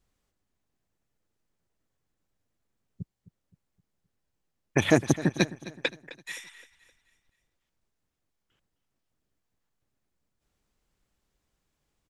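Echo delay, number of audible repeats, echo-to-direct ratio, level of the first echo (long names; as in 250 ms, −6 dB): 260 ms, 3, −16.0 dB, −17.0 dB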